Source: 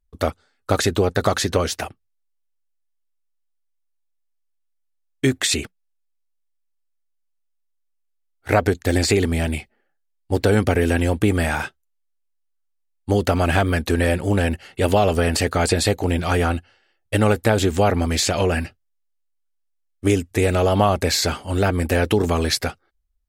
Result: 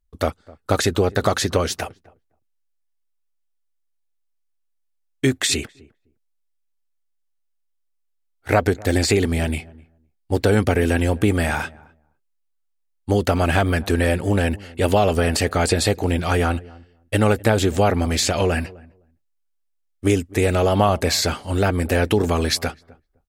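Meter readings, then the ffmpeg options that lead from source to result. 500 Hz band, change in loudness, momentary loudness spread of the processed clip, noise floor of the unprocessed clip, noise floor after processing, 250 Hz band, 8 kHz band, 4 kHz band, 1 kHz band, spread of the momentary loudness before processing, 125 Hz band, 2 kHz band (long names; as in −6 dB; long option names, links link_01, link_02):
0.0 dB, 0.0 dB, 8 LU, −71 dBFS, −70 dBFS, 0.0 dB, 0.0 dB, 0.0 dB, 0.0 dB, 8 LU, 0.0 dB, 0.0 dB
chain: -filter_complex "[0:a]asplit=2[link_01][link_02];[link_02]adelay=256,lowpass=frequency=850:poles=1,volume=-21dB,asplit=2[link_03][link_04];[link_04]adelay=256,lowpass=frequency=850:poles=1,volume=0.16[link_05];[link_01][link_03][link_05]amix=inputs=3:normalize=0"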